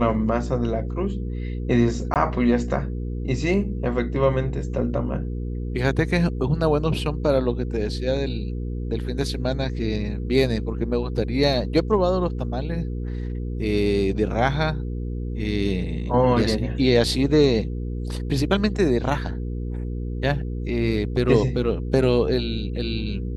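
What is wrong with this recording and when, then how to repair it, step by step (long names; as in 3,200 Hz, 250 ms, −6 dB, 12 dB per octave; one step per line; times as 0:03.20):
mains hum 60 Hz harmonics 8 −28 dBFS
0:02.14–0:02.16: drop-out 18 ms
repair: hum removal 60 Hz, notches 8
repair the gap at 0:02.14, 18 ms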